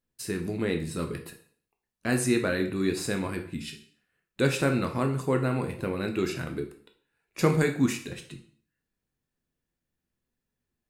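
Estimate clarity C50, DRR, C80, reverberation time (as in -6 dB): 10.5 dB, 4.0 dB, 14.0 dB, 0.50 s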